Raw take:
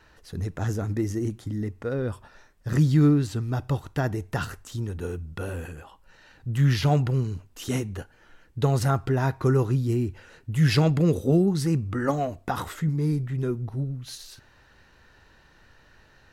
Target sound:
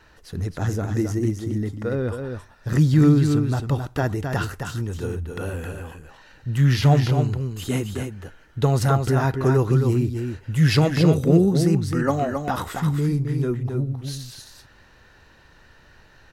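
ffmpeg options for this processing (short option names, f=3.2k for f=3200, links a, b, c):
-filter_complex "[0:a]asettb=1/sr,asplit=3[a][b][c];[a]atrim=end=7.224[d];[b]atrim=start=7.22:end=7.85,asetpts=PTS-STARTPTS,afade=t=in:d=0.004:c=qsin,afade=t=out:st=0.626:d=0.004:c=qsin,bandreject=f=5.7k:w=5.1[e];[c]atrim=start=7.846[f];[d][e]acrossfade=d=0.004:c1=hsin:c2=qsin[g];[g][f]acrossfade=d=0.004:c1=qsin:c2=hsin,aecho=1:1:266:0.501,volume=3dB"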